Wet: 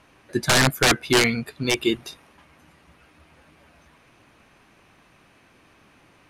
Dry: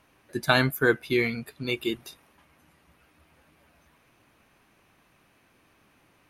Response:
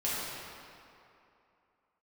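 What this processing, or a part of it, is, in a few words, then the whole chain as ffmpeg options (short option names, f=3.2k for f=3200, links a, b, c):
overflowing digital effects unit: -af "aeval=exprs='(mod(6.68*val(0)+1,2)-1)/6.68':c=same,lowpass=9.1k,volume=7dB"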